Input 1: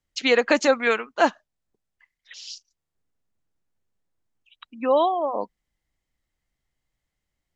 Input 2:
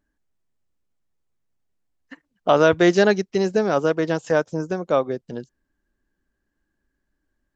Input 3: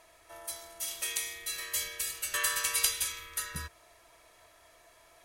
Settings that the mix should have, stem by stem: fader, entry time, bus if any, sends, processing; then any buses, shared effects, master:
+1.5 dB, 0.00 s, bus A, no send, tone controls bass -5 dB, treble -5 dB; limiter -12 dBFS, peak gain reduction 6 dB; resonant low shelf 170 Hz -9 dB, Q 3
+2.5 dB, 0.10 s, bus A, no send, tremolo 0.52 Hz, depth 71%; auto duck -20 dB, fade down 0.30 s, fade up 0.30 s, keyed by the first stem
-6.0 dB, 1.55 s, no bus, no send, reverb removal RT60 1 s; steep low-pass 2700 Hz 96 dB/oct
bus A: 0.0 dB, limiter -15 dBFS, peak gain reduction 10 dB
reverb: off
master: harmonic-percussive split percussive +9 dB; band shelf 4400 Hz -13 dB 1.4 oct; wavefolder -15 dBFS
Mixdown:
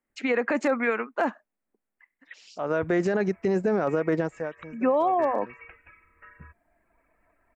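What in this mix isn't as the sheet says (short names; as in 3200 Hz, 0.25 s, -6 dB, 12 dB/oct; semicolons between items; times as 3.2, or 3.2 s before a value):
stem 2: missing tremolo 0.52 Hz, depth 71%; stem 3: entry 1.55 s -> 2.85 s; master: missing harmonic-percussive split percussive +9 dB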